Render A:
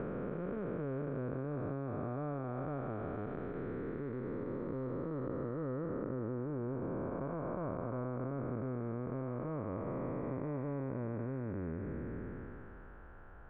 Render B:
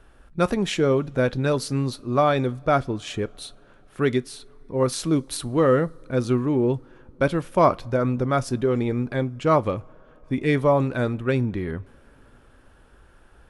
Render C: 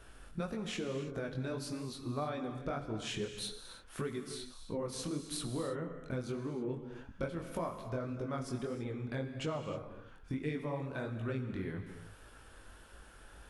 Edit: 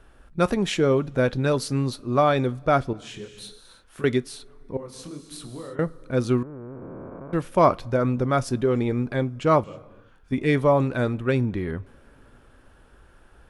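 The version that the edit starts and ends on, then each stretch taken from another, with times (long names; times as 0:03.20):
B
0:02.93–0:04.04: punch in from C
0:04.77–0:05.79: punch in from C
0:06.43–0:07.33: punch in from A
0:09.64–0:10.32: punch in from C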